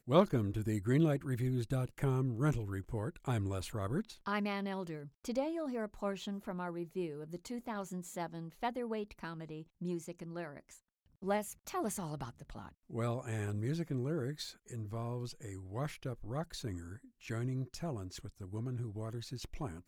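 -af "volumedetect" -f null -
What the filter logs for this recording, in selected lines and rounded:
mean_volume: -37.7 dB
max_volume: -15.5 dB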